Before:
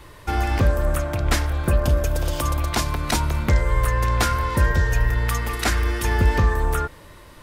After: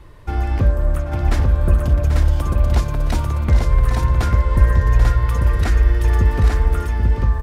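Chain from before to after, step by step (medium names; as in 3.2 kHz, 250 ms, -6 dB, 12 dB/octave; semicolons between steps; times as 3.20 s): tilt EQ -2 dB/octave; on a send: multi-tap echo 787/843 ms -8.5/-3.5 dB; on the sum: trim -4.5 dB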